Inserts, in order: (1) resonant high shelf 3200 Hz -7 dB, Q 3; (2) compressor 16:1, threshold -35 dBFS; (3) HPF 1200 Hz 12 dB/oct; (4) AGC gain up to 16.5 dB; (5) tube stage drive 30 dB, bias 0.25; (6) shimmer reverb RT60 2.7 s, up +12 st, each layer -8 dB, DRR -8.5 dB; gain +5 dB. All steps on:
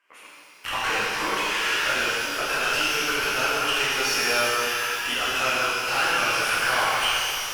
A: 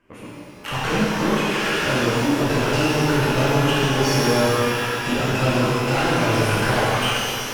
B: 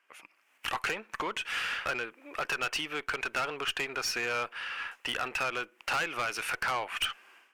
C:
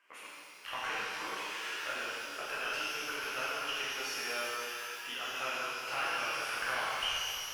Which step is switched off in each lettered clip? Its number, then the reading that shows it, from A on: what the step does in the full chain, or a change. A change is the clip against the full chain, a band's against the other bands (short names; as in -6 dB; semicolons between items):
3, 125 Hz band +22.0 dB; 6, 8 kHz band -4.0 dB; 4, 125 Hz band -4.0 dB